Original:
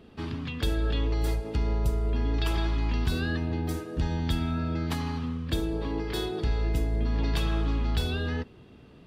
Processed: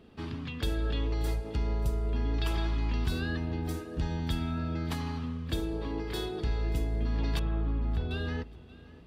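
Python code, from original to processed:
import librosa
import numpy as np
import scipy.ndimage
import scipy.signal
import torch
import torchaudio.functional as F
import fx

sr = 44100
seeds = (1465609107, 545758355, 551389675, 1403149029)

p1 = fx.spacing_loss(x, sr, db_at_10k=40, at=(7.39, 8.11))
p2 = p1 + fx.echo_feedback(p1, sr, ms=581, feedback_pct=28, wet_db=-20.5, dry=0)
y = p2 * librosa.db_to_amplitude(-3.5)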